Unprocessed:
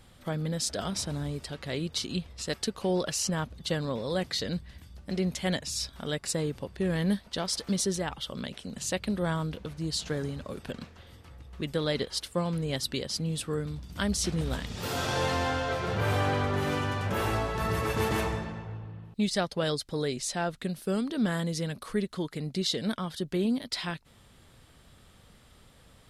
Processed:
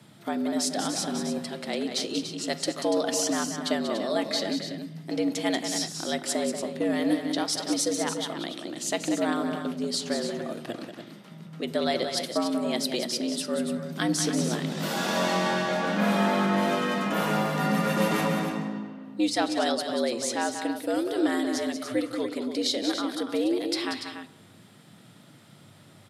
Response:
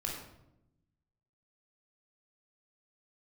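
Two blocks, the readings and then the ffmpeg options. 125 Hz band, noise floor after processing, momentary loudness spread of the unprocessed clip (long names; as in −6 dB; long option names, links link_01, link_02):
−4.5 dB, −52 dBFS, 8 LU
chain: -filter_complex "[0:a]aecho=1:1:186.6|288.6:0.398|0.355,asplit=2[link_01][link_02];[1:a]atrim=start_sample=2205[link_03];[link_02][link_03]afir=irnorm=-1:irlink=0,volume=-14.5dB[link_04];[link_01][link_04]amix=inputs=2:normalize=0,afreqshift=99,volume=1dB"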